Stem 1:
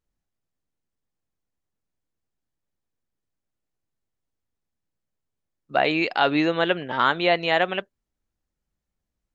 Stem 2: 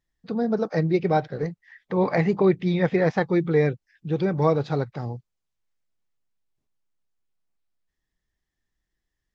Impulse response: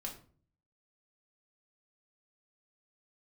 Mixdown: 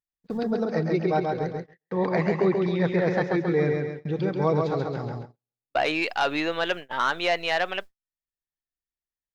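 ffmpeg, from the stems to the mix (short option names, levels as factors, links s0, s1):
-filter_complex "[0:a]highpass=58,adynamicequalizer=threshold=0.0141:dfrequency=230:dqfactor=0.74:tfrequency=230:tqfactor=0.74:attack=5:release=100:ratio=0.375:range=4:mode=cutabove:tftype=bell,asoftclip=type=tanh:threshold=0.211,volume=0.944,asplit=2[s0][s1];[1:a]acompressor=mode=upward:threshold=0.0794:ratio=2.5,lowshelf=f=90:g=8,volume=0.708,asplit=2[s2][s3];[s3]volume=0.668[s4];[s1]apad=whole_len=412131[s5];[s2][s5]sidechaincompress=threshold=0.0355:ratio=12:attack=6.7:release=830[s6];[s4]aecho=0:1:135|270|405|540|675|810|945:1|0.51|0.26|0.133|0.0677|0.0345|0.0176[s7];[s0][s6][s7]amix=inputs=3:normalize=0,agate=range=0.00316:threshold=0.0316:ratio=16:detection=peak,lowshelf=f=130:g=-9.5"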